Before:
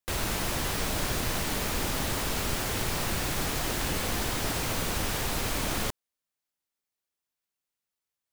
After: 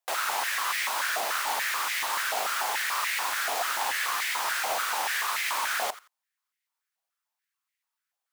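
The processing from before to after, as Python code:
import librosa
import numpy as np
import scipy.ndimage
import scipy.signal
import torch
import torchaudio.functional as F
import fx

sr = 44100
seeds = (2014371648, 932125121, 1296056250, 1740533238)

y = fx.echo_feedback(x, sr, ms=86, feedback_pct=20, wet_db=-17.0)
y = fx.filter_held_highpass(y, sr, hz=6.9, low_hz=730.0, high_hz=2000.0)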